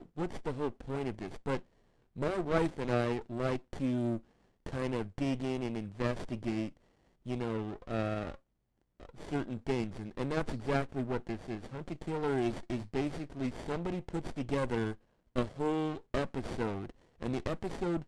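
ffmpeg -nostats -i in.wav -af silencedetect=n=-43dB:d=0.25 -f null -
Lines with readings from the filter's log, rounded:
silence_start: 1.60
silence_end: 2.16 | silence_duration: 0.56
silence_start: 4.19
silence_end: 4.66 | silence_duration: 0.47
silence_start: 6.69
silence_end: 7.26 | silence_duration: 0.57
silence_start: 8.35
silence_end: 9.00 | silence_duration: 0.65
silence_start: 14.94
silence_end: 15.36 | silence_duration: 0.41
silence_start: 16.90
silence_end: 17.23 | silence_duration: 0.33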